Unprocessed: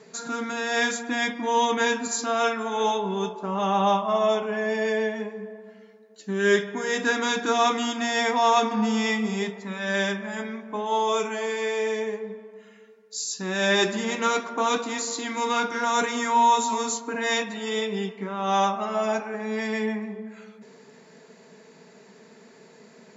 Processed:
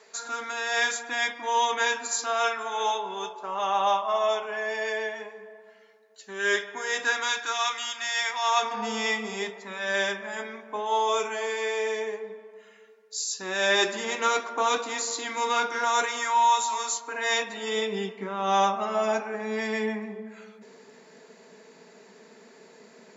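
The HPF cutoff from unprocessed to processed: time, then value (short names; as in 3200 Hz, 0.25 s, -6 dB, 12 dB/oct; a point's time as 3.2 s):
6.99 s 640 Hz
7.66 s 1400 Hz
8.38 s 1400 Hz
8.9 s 410 Hz
15.77 s 410 Hz
16.38 s 810 Hz
16.96 s 810 Hz
17.83 s 230 Hz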